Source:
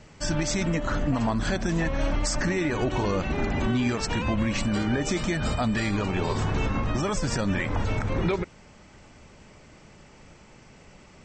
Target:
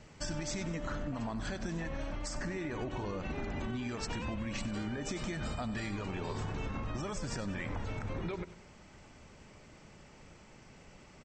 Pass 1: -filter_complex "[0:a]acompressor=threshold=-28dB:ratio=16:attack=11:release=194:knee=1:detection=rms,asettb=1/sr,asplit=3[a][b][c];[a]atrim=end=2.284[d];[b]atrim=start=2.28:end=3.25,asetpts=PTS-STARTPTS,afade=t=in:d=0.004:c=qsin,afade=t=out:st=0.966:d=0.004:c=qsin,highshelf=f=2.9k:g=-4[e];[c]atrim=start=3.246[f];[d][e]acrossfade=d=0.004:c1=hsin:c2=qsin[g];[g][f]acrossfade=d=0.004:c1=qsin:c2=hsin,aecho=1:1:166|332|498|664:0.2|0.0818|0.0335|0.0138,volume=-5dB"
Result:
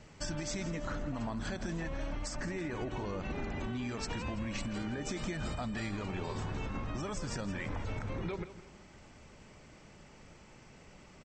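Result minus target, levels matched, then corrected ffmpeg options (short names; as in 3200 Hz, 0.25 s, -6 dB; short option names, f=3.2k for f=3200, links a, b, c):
echo 71 ms late
-filter_complex "[0:a]acompressor=threshold=-28dB:ratio=16:attack=11:release=194:knee=1:detection=rms,asettb=1/sr,asplit=3[a][b][c];[a]atrim=end=2.284[d];[b]atrim=start=2.28:end=3.25,asetpts=PTS-STARTPTS,afade=t=in:d=0.004:c=qsin,afade=t=out:st=0.966:d=0.004:c=qsin,highshelf=f=2.9k:g=-4[e];[c]atrim=start=3.246[f];[d][e]acrossfade=d=0.004:c1=hsin:c2=qsin[g];[g][f]acrossfade=d=0.004:c1=qsin:c2=hsin,aecho=1:1:95|190|285|380:0.2|0.0818|0.0335|0.0138,volume=-5dB"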